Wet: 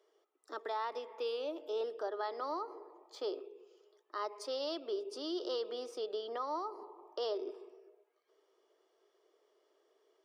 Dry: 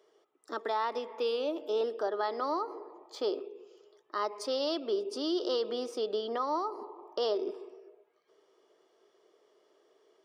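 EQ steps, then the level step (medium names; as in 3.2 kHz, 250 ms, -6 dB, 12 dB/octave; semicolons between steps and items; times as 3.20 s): high-pass 300 Hz 24 dB/octave; -6.0 dB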